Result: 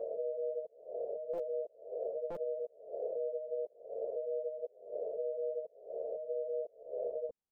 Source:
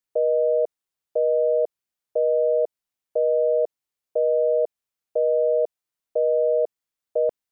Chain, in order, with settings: reverse spectral sustain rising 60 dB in 0.69 s; recorder AGC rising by 8.8 dB/s; peak limiter -22.5 dBFS, peak gain reduction 10 dB; dynamic bell 480 Hz, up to +4 dB, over -41 dBFS, Q 2.3; compression 4:1, threshold -33 dBFS, peak gain reduction 8.5 dB; Bessel low-pass 640 Hz, order 4; peaking EQ 330 Hz -3 dB 1.1 oct; pre-echo 40 ms -15 dB; buffer glitch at 1.33/2.30 s, samples 256, times 8; three-phase chorus; trim +2.5 dB

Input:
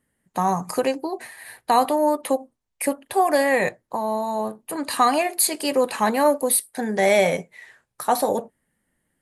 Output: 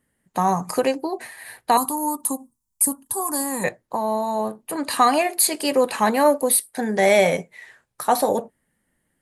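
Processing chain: 1.77–3.64 s: FFT filter 240 Hz 0 dB, 670 Hz -20 dB, 950 Hz 0 dB, 2.2 kHz -22 dB, 8 kHz +10 dB; trim +1.5 dB

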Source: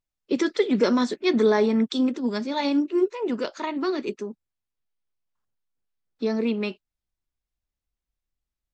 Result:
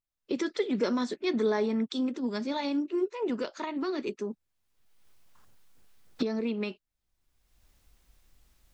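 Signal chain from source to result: recorder AGC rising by 29 dB/s; trim -7.5 dB

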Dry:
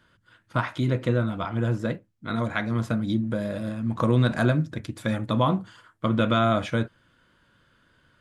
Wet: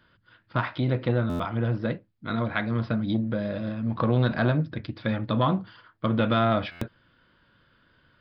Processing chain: resampled via 11.025 kHz; buffer glitch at 1.29/6.71 s, samples 512, times 8; transformer saturation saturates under 320 Hz

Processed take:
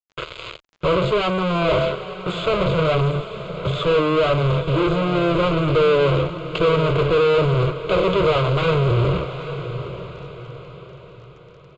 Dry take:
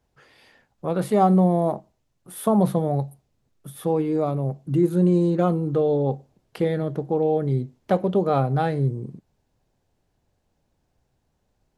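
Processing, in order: high-pass 47 Hz 24 dB/octave; treble shelf 5 kHz -3 dB; de-hum 72.83 Hz, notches 9; reverse; compression 6:1, threshold -28 dBFS, peak gain reduction 14.5 dB; reverse; fuzz box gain 56 dB, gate -51 dBFS; static phaser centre 1.2 kHz, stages 8; crackle 35 per s -37 dBFS; distance through air 79 m; on a send: echo that smears into a reverb 857 ms, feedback 41%, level -11 dB; on the sum: resampled via 16 kHz

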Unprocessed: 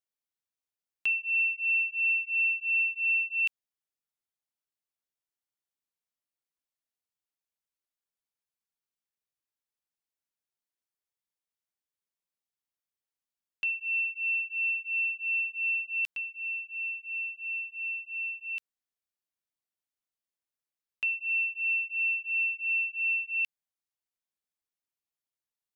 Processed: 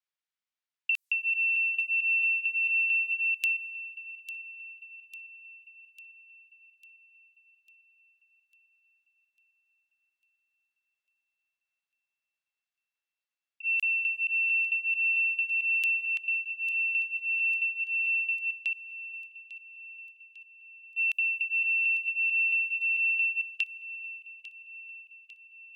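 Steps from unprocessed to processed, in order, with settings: time reversed locally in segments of 223 ms; level-controlled noise filter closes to 2.3 kHz, open at -28.5 dBFS; tilt EQ +5.5 dB/octave; compression, threshold -26 dBFS, peak gain reduction 9 dB; on a send: feedback echo behind a high-pass 849 ms, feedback 56%, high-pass 2.8 kHz, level -11.5 dB

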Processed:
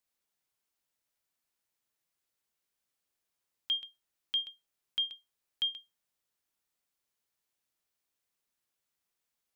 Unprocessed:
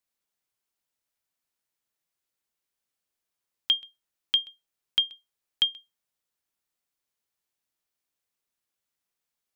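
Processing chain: peak limiter -24.5 dBFS, peak gain reduction 12 dB

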